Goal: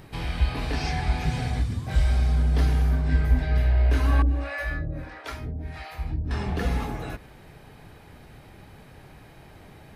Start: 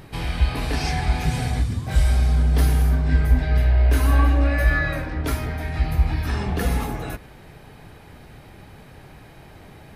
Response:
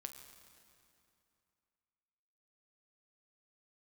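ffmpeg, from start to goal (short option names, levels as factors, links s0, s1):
-filter_complex "[0:a]acrossover=split=6600[s0][s1];[s1]acompressor=threshold=0.00251:ratio=4:attack=1:release=60[s2];[s0][s2]amix=inputs=2:normalize=0,asettb=1/sr,asplit=3[s3][s4][s5];[s3]atrim=end=4.224[s6];[s4]atrim=start=4.22:end=6.31,asetpts=PTS-STARTPTS,afade=t=in:d=0.004:c=qsin,afade=t=out:st=2.086:d=0.004:c=qsin,acrossover=split=510[s7][s8];[s7]aeval=exprs='val(0)*(1-1/2+1/2*cos(2*PI*1.5*n/s))':c=same[s9];[s8]aeval=exprs='val(0)*(1-1/2-1/2*cos(2*PI*1.5*n/s))':c=same[s10];[s9][s10]amix=inputs=2:normalize=0[s11];[s5]atrim=start=6.306[s12];[s6][s11]acrossfade=d=0.004:c1=hsin:c2=qsin[s13];[s13][s12]acrossfade=d=0.004:c1=qsin:c2=hsin,volume=0.668"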